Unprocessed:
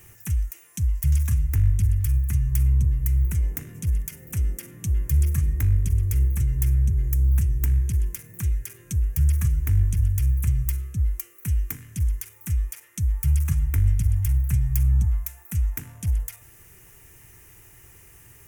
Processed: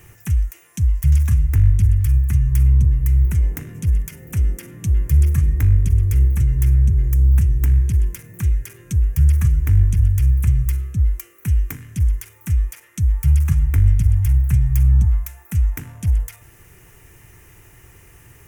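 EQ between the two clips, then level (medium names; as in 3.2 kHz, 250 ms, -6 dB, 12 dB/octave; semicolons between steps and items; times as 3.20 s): treble shelf 4.5 kHz -8 dB; +6.0 dB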